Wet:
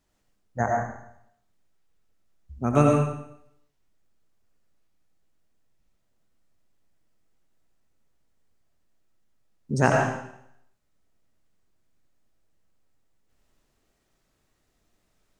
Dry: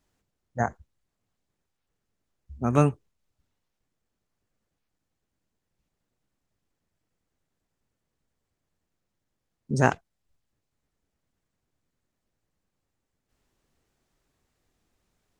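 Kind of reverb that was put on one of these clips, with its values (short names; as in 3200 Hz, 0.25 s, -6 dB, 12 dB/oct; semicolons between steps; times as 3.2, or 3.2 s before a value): digital reverb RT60 0.73 s, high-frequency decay 1×, pre-delay 50 ms, DRR -0.5 dB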